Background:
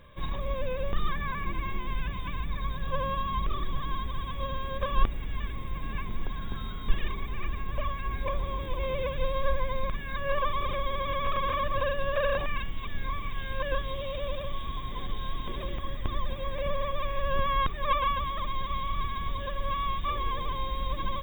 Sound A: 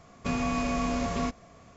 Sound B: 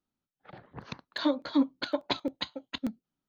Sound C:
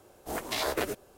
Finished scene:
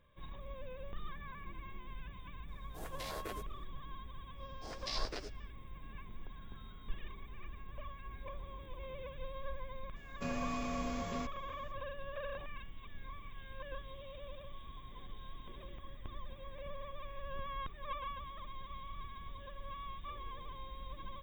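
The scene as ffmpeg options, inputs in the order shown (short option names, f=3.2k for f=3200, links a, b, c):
-filter_complex "[3:a]asplit=2[a][b];[0:a]volume=-15.5dB[c];[b]lowpass=f=5.1k:t=q:w=5.5[d];[a]atrim=end=1.17,asetpts=PTS-STARTPTS,volume=-14.5dB,afade=t=in:d=0.004:c=hsin,afade=t=out:st=1.166:d=0.004:c=hsin,adelay=2480[e];[d]atrim=end=1.17,asetpts=PTS-STARTPTS,volume=-15dB,afade=t=in:d=0.1,afade=t=out:st=1.07:d=0.1,adelay=4350[f];[1:a]atrim=end=1.76,asetpts=PTS-STARTPTS,volume=-10.5dB,afade=t=in:d=0.004:c=hsin,afade=t=out:st=1.756:d=0.004:c=hsin,adelay=9960[g];[c][e][f][g]amix=inputs=4:normalize=0"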